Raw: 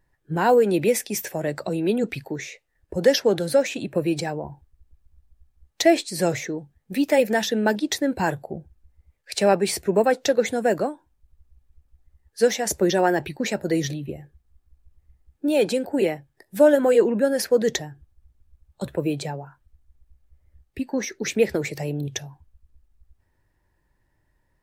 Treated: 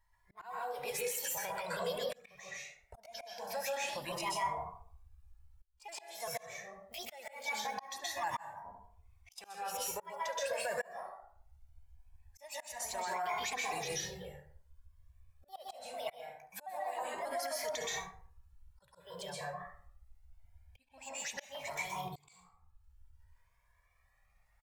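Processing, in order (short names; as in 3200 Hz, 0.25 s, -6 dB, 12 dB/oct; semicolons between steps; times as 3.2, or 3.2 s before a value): trilling pitch shifter +4 st, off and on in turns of 0.196 s; bell 830 Hz +11.5 dB 1.4 oct; on a send: echo 70 ms -20.5 dB; on the sum: plate-style reverb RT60 0.53 s, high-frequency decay 0.55×, pre-delay 0.115 s, DRR -3.5 dB; compressor 16:1, threshold -7 dBFS, peak gain reduction 10 dB; passive tone stack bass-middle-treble 10-0-10; auto swell 0.78 s; limiter -24.5 dBFS, peak gain reduction 10.5 dB; cascading flanger rising 0.23 Hz; gain +1 dB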